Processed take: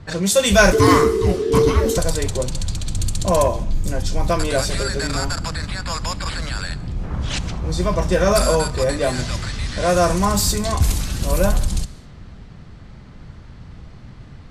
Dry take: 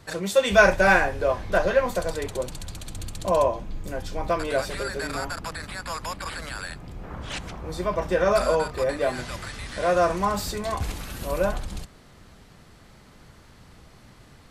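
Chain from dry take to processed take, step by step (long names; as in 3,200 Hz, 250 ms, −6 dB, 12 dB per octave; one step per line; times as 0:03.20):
0:06.83–0:07.89: background noise white −68 dBFS
bass and treble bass +10 dB, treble +13 dB
in parallel at −6 dB: hard clipping −15.5 dBFS, distortion −12 dB
on the sum: low-pass that shuts in the quiet parts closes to 2,200 Hz, open at −12.5 dBFS
0:00.72–0:01.98: frequency shifter −470 Hz
on a send at −18.5 dB: convolution reverb, pre-delay 3 ms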